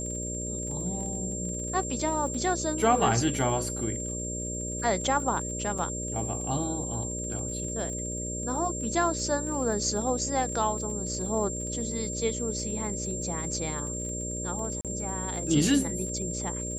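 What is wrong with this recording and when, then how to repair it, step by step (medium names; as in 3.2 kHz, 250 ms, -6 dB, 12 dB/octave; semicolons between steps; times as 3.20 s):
buzz 60 Hz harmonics 10 -36 dBFS
crackle 35 per s -38 dBFS
whine 7.4 kHz -34 dBFS
5.78–5.79 s: dropout 5 ms
14.81–14.85 s: dropout 37 ms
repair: de-click; de-hum 60 Hz, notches 10; band-stop 7.4 kHz, Q 30; interpolate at 5.78 s, 5 ms; interpolate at 14.81 s, 37 ms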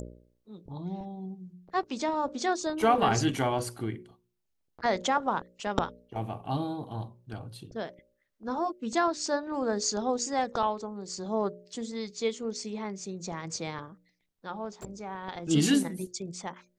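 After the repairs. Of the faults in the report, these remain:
nothing left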